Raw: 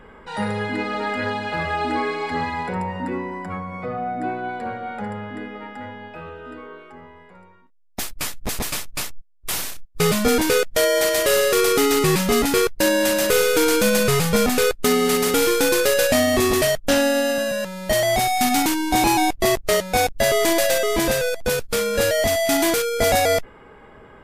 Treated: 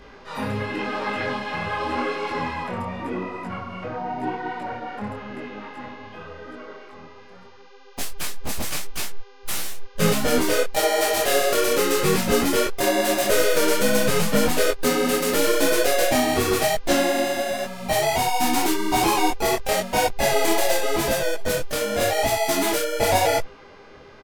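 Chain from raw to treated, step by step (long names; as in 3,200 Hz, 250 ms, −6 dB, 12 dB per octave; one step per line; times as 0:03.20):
hum with harmonics 400 Hz, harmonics 13, −49 dBFS −5 dB per octave
pitch-shifted copies added −7 semitones −14 dB, +4 semitones −5 dB, +5 semitones −16 dB
micro pitch shift up and down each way 31 cents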